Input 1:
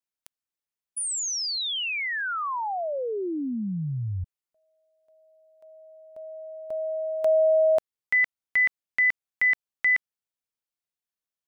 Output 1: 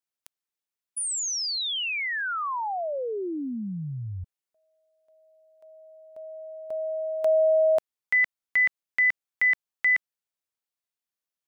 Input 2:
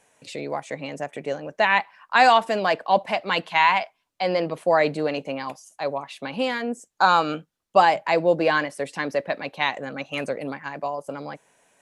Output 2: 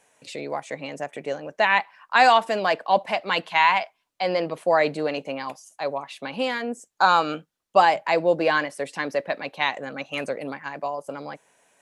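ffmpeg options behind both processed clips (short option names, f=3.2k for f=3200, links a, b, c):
-af "lowshelf=f=210:g=-5.5"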